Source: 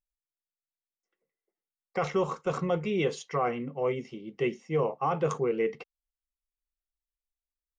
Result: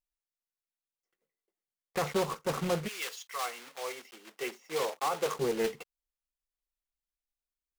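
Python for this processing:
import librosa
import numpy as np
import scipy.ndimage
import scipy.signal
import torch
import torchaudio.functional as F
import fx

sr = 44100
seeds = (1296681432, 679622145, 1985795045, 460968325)

y = fx.block_float(x, sr, bits=3)
y = fx.highpass(y, sr, hz=fx.line((2.87, 1400.0), (5.38, 320.0)), slope=12, at=(2.87, 5.38), fade=0.02)
y = fx.doppler_dist(y, sr, depth_ms=0.37)
y = y * librosa.db_to_amplitude(-2.5)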